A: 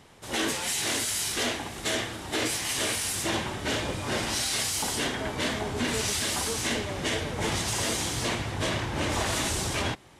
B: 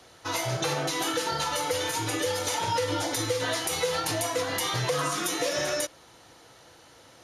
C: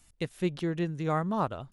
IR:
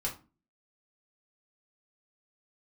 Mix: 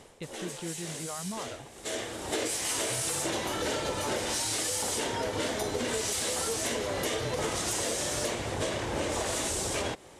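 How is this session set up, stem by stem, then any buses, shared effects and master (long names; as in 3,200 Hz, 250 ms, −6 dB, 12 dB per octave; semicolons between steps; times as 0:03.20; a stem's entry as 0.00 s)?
−0.5 dB, 0.00 s, no send, octave-band graphic EQ 125/500/8,000 Hz −3/+9/+7 dB; automatic ducking −15 dB, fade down 0.35 s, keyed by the third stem
−3.5 dB, 2.45 s, no send, no processing
−3.0 dB, 0.00 s, no send, brickwall limiter −26.5 dBFS, peak gain reduction 9.5 dB; reverb reduction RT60 1.6 s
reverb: not used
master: downward compressor, threshold −28 dBFS, peak gain reduction 8 dB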